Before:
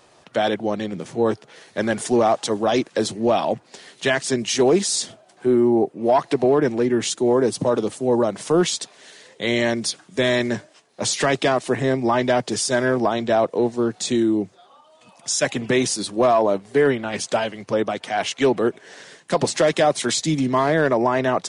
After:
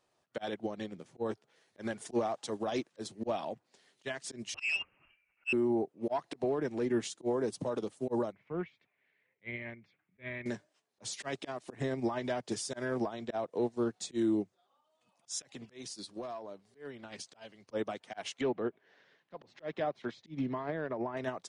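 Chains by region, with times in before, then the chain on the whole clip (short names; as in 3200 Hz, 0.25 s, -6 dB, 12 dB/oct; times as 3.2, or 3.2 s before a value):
4.54–5.53 inverted band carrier 3000 Hz + core saturation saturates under 1700 Hz
8.32–10.46 ladder low-pass 2400 Hz, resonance 75% + bell 86 Hz +13 dB 2 oct
15.43–17.71 bell 4600 Hz +6 dB 0.76 oct + compressor 8:1, threshold -24 dBFS
18.41–21.17 air absorption 280 m + compressor 2:1, threshold -23 dBFS + mismatched tape noise reduction encoder only
whole clip: auto swell 0.108 s; limiter -16.5 dBFS; upward expander 2.5:1, over -33 dBFS; gain -5 dB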